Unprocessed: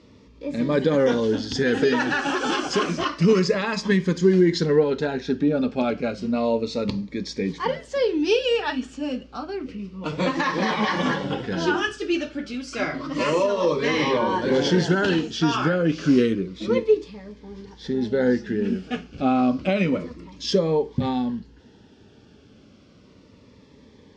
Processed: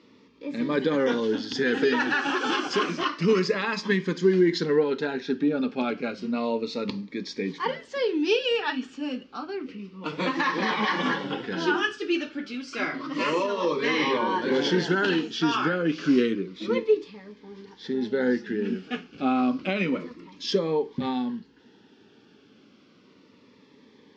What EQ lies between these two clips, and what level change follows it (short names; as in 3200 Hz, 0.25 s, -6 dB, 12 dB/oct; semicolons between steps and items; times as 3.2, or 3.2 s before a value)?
BPF 250–4800 Hz; bell 610 Hz -8 dB 0.67 oct; 0.0 dB